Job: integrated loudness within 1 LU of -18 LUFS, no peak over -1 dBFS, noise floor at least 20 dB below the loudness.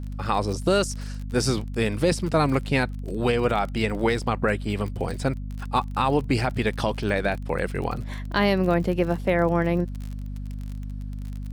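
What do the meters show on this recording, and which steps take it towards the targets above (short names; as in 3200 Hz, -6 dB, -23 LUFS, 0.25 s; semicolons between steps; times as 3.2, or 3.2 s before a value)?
ticks 36/s; hum 50 Hz; harmonics up to 250 Hz; hum level -30 dBFS; loudness -25.0 LUFS; peak -10.0 dBFS; loudness target -18.0 LUFS
-> de-click; notches 50/100/150/200/250 Hz; gain +7 dB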